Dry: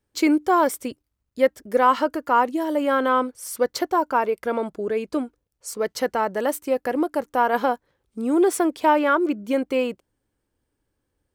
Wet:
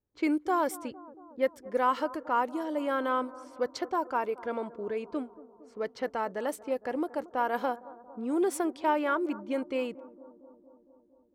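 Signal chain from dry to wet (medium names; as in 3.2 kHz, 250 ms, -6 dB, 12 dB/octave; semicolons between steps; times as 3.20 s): bucket-brigade echo 229 ms, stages 2048, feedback 69%, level -19 dB; level-controlled noise filter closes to 1 kHz, open at -17.5 dBFS; trim -9 dB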